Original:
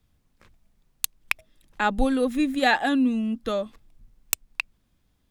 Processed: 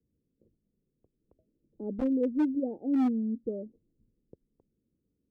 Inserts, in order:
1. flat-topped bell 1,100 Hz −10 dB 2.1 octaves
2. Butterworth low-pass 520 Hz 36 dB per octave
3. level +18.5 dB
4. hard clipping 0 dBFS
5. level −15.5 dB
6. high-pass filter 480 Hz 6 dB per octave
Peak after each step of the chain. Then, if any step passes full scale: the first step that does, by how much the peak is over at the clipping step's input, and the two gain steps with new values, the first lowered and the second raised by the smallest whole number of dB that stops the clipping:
−1.5, −11.0, +7.5, 0.0, −15.5, −19.0 dBFS
step 3, 7.5 dB
step 3 +10.5 dB, step 5 −7.5 dB

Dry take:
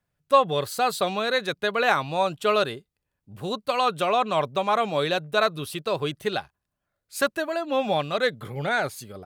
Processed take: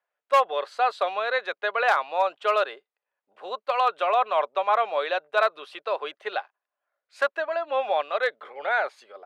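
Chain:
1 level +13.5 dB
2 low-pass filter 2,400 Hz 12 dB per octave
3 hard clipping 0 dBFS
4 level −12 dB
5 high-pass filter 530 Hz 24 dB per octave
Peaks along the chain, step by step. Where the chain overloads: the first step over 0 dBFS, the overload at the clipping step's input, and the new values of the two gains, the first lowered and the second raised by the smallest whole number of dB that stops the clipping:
+8.0, +7.5, 0.0, −12.0, −8.5 dBFS
step 1, 7.5 dB
step 1 +5.5 dB, step 4 −4 dB

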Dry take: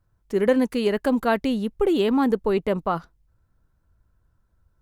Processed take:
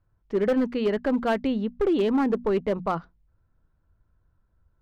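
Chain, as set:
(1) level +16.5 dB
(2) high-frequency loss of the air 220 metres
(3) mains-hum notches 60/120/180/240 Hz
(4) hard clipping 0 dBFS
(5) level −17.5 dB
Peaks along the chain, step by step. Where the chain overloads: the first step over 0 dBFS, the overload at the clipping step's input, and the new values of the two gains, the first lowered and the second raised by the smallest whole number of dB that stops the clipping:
+9.5, +9.0, +8.5, 0.0, −17.5 dBFS
step 1, 8.5 dB
step 1 +7.5 dB, step 5 −8.5 dB

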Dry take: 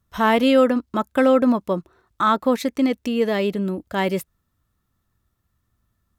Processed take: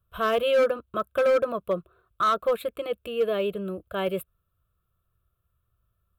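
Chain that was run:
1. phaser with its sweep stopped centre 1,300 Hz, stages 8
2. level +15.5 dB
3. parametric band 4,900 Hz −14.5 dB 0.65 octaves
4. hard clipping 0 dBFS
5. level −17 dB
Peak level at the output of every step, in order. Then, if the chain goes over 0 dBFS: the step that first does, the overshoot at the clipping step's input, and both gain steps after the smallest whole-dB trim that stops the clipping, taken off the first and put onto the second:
−8.0, +7.5, +7.5, 0.0, −17.0 dBFS
step 2, 7.5 dB
step 2 +7.5 dB, step 5 −9 dB

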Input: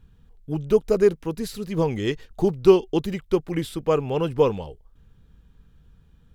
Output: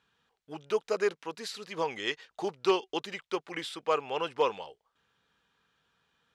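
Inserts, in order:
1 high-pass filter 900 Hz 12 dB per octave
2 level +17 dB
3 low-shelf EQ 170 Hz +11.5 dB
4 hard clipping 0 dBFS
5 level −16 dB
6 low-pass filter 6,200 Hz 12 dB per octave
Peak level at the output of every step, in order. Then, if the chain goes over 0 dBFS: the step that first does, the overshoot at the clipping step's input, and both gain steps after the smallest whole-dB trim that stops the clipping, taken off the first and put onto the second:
−12.5, +4.5, +5.0, 0.0, −16.0, −16.0 dBFS
step 2, 5.0 dB
step 2 +12 dB, step 5 −11 dB

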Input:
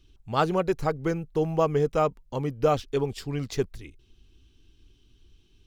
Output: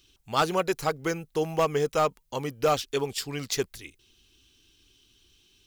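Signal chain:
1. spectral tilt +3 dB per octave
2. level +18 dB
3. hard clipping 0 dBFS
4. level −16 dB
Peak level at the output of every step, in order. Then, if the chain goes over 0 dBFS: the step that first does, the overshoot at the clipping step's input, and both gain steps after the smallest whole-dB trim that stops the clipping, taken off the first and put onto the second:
−8.0, +10.0, 0.0, −16.0 dBFS
step 2, 10.0 dB
step 2 +8 dB, step 4 −6 dB

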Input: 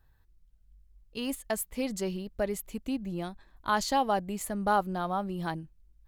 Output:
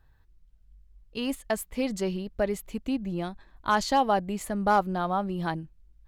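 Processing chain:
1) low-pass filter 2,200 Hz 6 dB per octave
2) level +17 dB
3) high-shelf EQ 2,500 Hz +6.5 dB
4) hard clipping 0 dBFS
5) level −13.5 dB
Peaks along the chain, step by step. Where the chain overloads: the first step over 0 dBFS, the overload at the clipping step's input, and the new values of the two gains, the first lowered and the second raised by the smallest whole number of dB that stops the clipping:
−15.0, +2.0, +3.0, 0.0, −13.5 dBFS
step 2, 3.0 dB
step 2 +14 dB, step 5 −10.5 dB

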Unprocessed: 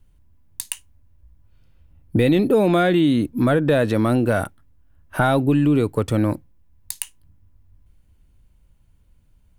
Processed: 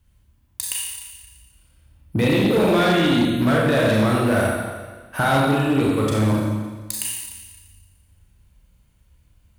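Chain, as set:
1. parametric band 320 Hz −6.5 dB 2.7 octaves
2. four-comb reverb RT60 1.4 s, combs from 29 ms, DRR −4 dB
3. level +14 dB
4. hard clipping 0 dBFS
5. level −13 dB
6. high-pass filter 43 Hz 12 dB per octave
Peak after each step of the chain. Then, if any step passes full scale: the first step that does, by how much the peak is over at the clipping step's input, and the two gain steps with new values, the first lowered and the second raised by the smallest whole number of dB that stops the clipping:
−5.5, −4.5, +9.5, 0.0, −13.0, −9.0 dBFS
step 3, 9.5 dB
step 3 +4 dB, step 5 −3 dB

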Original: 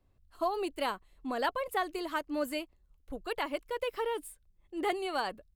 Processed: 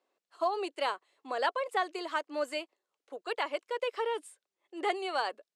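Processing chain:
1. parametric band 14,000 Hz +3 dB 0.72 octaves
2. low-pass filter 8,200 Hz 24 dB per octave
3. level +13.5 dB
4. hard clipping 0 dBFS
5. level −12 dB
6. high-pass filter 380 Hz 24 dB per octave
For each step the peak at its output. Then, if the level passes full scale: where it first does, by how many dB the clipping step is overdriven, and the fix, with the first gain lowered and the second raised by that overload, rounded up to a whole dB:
−17.5, −17.5, −4.0, −4.0, −16.0, −16.0 dBFS
no step passes full scale

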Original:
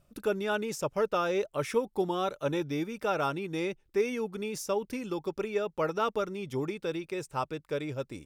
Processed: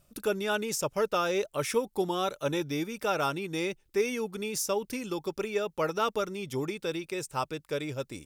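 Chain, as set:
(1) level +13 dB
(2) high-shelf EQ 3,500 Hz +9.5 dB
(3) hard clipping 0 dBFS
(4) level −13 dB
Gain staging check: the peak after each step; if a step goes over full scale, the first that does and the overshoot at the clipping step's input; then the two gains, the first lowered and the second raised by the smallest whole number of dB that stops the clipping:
−2.5, −2.0, −2.0, −15.0 dBFS
no step passes full scale

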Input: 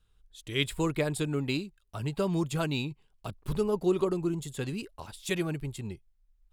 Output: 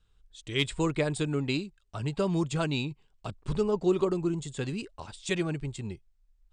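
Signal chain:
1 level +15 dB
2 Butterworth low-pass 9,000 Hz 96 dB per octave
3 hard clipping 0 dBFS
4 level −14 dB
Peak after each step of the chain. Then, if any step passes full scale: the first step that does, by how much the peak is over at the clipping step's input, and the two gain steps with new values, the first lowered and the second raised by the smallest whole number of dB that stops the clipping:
+3.0, +3.0, 0.0, −14.0 dBFS
step 1, 3.0 dB
step 1 +12 dB, step 4 −11 dB

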